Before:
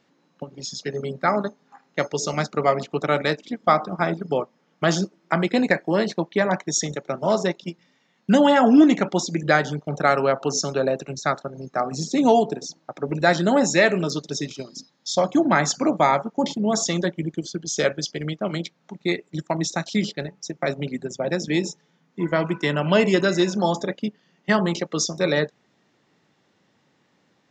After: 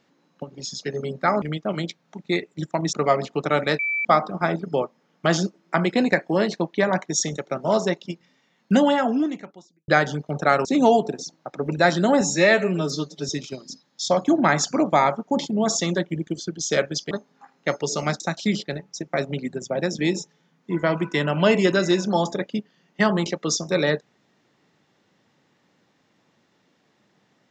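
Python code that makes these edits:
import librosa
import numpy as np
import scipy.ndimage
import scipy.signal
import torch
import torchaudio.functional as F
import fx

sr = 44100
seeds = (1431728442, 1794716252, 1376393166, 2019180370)

y = fx.edit(x, sr, fx.swap(start_s=1.42, length_s=1.09, other_s=18.18, other_length_s=1.51),
    fx.bleep(start_s=3.37, length_s=0.26, hz=2320.0, db=-21.5),
    fx.fade_out_span(start_s=8.3, length_s=1.16, curve='qua'),
    fx.cut(start_s=10.23, length_s=1.85),
    fx.stretch_span(start_s=13.64, length_s=0.72, factor=1.5), tone=tone)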